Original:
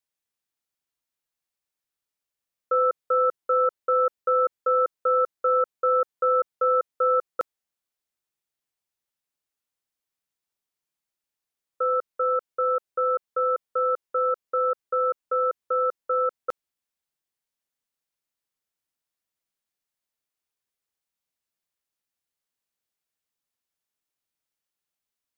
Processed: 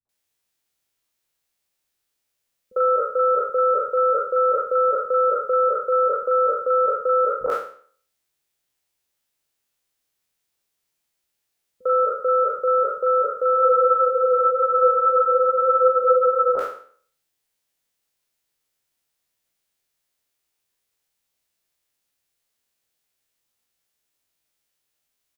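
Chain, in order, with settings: spectral trails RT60 0.50 s; limiter -19 dBFS, peak gain reduction 7 dB; three bands offset in time lows, mids, highs 50/90 ms, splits 210/1100 Hz; spectral freeze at 13.58, 2.97 s; gain +8.5 dB

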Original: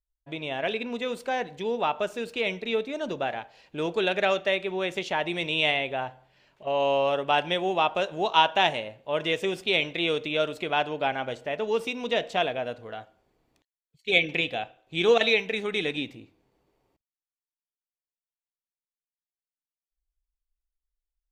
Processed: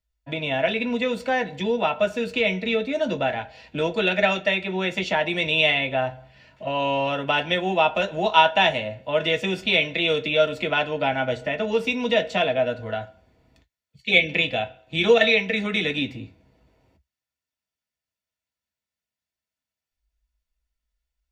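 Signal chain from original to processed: in parallel at +1.5 dB: compressor, threshold -34 dBFS, peak gain reduction 18.5 dB; on the sum: reverb, pre-delay 3 ms, DRR 3 dB; gain -6.5 dB

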